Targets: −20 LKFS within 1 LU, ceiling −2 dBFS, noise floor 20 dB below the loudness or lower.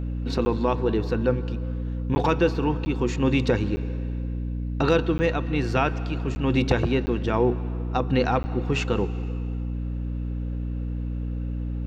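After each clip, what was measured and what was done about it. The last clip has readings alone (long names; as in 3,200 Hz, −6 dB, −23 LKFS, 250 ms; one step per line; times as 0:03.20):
number of dropouts 8; longest dropout 10 ms; mains hum 60 Hz; hum harmonics up to 300 Hz; level of the hum −26 dBFS; integrated loudness −25.5 LKFS; sample peak −9.0 dBFS; target loudness −20.0 LKFS
→ repair the gap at 0:00.45/0:02.15/0:02.85/0:03.76/0:05.18/0:06.35/0:07.06/0:08.43, 10 ms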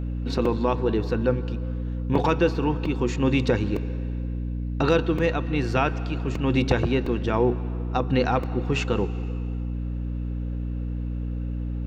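number of dropouts 0; mains hum 60 Hz; hum harmonics up to 300 Hz; level of the hum −26 dBFS
→ hum removal 60 Hz, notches 5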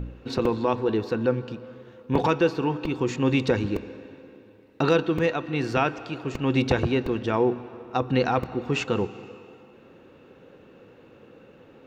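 mains hum none found; integrated loudness −25.5 LKFS; sample peak −8.0 dBFS; target loudness −20.0 LKFS
→ level +5.5 dB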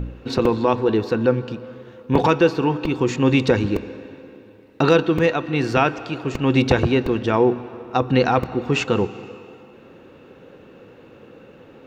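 integrated loudness −20.0 LKFS; sample peak −2.5 dBFS; background noise floor −47 dBFS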